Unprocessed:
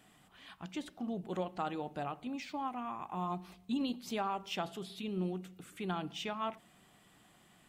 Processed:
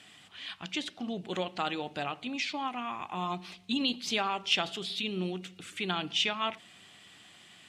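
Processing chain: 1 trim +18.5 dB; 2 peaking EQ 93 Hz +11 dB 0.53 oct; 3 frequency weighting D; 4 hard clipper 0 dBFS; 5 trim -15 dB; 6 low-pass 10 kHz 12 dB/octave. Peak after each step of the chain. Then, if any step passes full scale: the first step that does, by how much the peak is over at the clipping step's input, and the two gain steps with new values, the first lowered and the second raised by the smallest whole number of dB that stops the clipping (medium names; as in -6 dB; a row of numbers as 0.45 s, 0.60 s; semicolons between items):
-4.5 dBFS, -5.0 dBFS, +3.5 dBFS, 0.0 dBFS, -15.0 dBFS, -14.5 dBFS; step 3, 3.5 dB; step 1 +14.5 dB, step 5 -11 dB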